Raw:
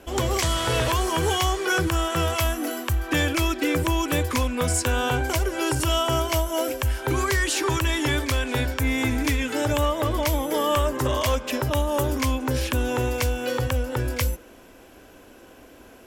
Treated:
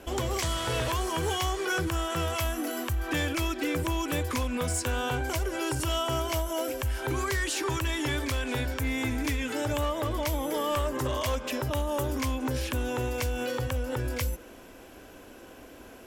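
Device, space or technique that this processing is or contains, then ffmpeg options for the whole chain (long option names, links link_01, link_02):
clipper into limiter: -af "asoftclip=type=hard:threshold=-17dB,alimiter=limit=-23dB:level=0:latency=1:release=116"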